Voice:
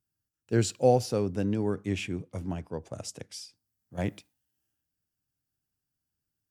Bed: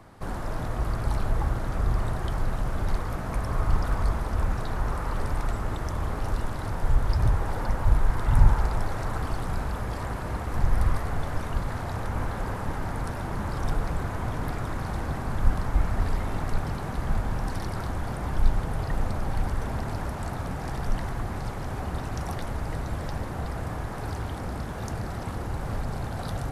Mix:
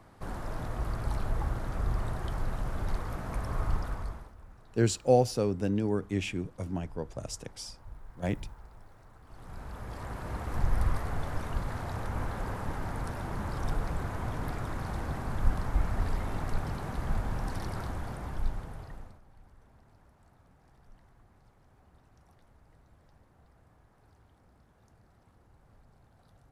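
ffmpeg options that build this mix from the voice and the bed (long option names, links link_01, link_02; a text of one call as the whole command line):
ffmpeg -i stem1.wav -i stem2.wav -filter_complex "[0:a]adelay=4250,volume=-0.5dB[link_01];[1:a]volume=16dB,afade=type=out:start_time=3.65:duration=0.69:silence=0.0944061,afade=type=in:start_time=9.25:duration=1.25:silence=0.0841395,afade=type=out:start_time=17.74:duration=1.47:silence=0.0530884[link_02];[link_01][link_02]amix=inputs=2:normalize=0" out.wav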